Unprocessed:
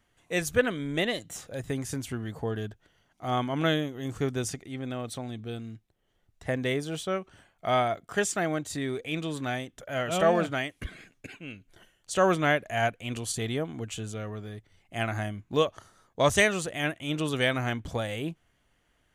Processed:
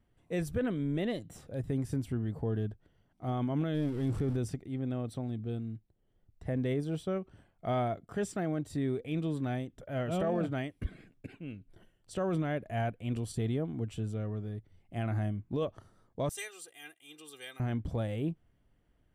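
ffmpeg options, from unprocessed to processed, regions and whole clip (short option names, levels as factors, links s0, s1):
-filter_complex "[0:a]asettb=1/sr,asplit=3[s0][s1][s2];[s0]atrim=end=3.744[s3];[s1]atrim=start=3.74:end=4.37,asetpts=PTS-STARTPTS,afade=t=in:d=0.004:c=qsin,afade=t=out:st=0.626:d=0.004:c=qsin,aeval=exprs='val(0)+0.5*0.0188*sgn(val(0))':c=same,lowpass=f=12000:w=0.5412,lowpass=f=12000:w=1.3066[s4];[s2]atrim=start=4.366[s5];[s3][s4]acrossfade=d=0.004:c1=hsin:c2=qsin[s6];[s6][s5]acrossfade=d=0.004:c1=qsin:c2=hsin,asettb=1/sr,asplit=3[s7][s8][s9];[s7]atrim=end=16.294[s10];[s8]atrim=start=16.29:end=17.6,asetpts=PTS-STARTPTS,afade=t=in:d=0.004:c=qsin,afade=t=out:st=1.306:d=0.004:c=qsin,highpass=130,aderivative,aecho=1:1:2.5:0.99,atrim=end_sample=57771[s11];[s9]atrim=start=17.596[s12];[s10][s11]acrossfade=d=0.004:c1=hsin:c2=qsin[s13];[s13][s12]acrossfade=d=0.004:c1=qsin:c2=hsin,tiltshelf=f=640:g=8,bandreject=f=6600:w=6.2,alimiter=limit=0.126:level=0:latency=1:release=12,volume=0.562"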